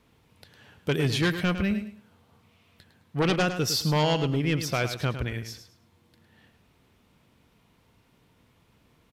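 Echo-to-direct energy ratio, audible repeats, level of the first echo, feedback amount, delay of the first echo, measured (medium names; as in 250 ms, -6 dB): -9.5 dB, 3, -10.0 dB, 24%, 106 ms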